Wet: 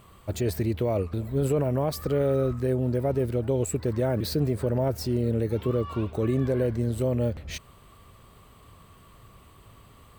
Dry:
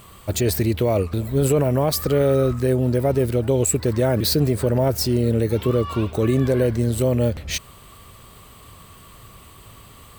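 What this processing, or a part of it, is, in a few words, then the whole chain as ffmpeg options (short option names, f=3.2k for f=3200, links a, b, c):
behind a face mask: -af "highshelf=f=2.7k:g=-8,volume=-6dB"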